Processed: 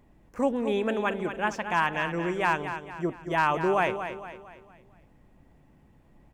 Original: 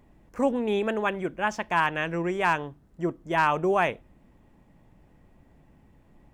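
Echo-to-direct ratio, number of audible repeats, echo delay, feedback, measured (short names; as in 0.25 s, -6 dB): -8.5 dB, 4, 0.229 s, 43%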